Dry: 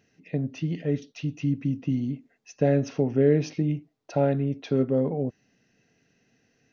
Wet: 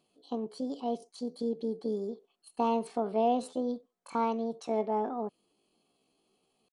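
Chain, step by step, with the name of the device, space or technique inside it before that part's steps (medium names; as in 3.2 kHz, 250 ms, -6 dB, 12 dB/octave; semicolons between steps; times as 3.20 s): chipmunk voice (pitch shift +8.5 st); trim -7 dB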